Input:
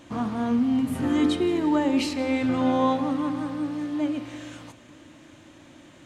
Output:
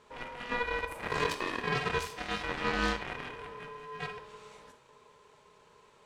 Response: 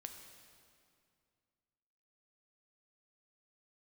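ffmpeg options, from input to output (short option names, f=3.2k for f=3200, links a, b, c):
-filter_complex "[0:a]aeval=exprs='val(0)*sin(2*PI*730*n/s)':c=same,aeval=exprs='0.266*(cos(1*acos(clip(val(0)/0.266,-1,1)))-cos(1*PI/2))+0.0668*(cos(7*acos(clip(val(0)/0.266,-1,1)))-cos(7*PI/2))':c=same[a];[1:a]atrim=start_sample=2205,atrim=end_sample=3969[b];[a][b]afir=irnorm=-1:irlink=0"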